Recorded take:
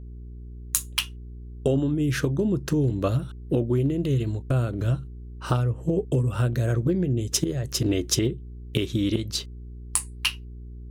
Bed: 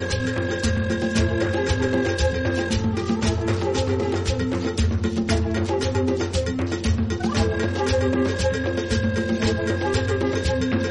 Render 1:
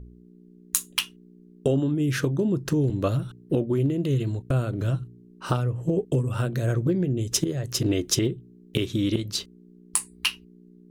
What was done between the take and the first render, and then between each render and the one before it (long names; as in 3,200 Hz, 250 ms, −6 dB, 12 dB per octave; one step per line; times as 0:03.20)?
hum removal 60 Hz, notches 2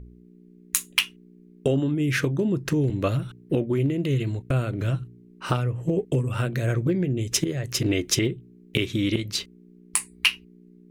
parametric band 2,200 Hz +9.5 dB 0.69 octaves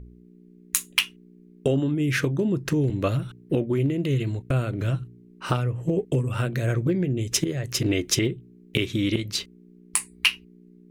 no processing that can be heard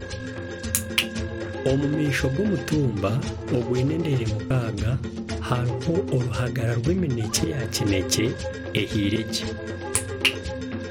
mix in bed −9 dB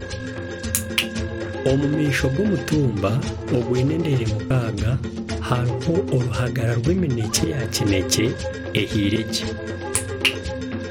level +3 dB
brickwall limiter −3 dBFS, peak gain reduction 2 dB